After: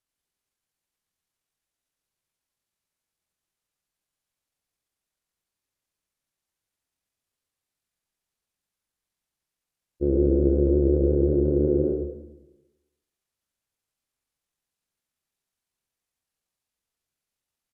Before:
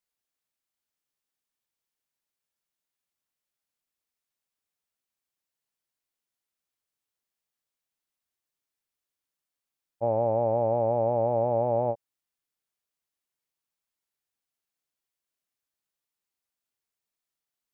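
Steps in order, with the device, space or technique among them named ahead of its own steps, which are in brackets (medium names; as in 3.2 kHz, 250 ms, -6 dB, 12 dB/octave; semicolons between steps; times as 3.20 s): monster voice (pitch shift -8.5 st; bass shelf 190 Hz +8.5 dB; delay 112 ms -6.5 dB; reverberation RT60 1.0 s, pre-delay 46 ms, DRR 7 dB)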